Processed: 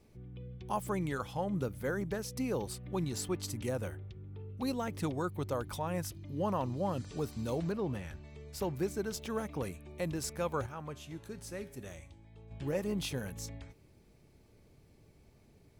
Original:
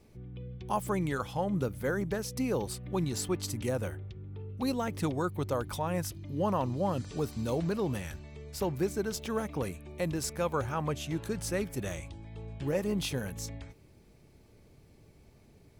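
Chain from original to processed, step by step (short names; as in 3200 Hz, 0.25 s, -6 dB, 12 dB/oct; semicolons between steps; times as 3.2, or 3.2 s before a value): 7.71–8.23 high shelf 3600 Hz -> 5700 Hz -12 dB; 10.66–12.51 resonator 81 Hz, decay 0.56 s, harmonics odd, mix 60%; gain -3.5 dB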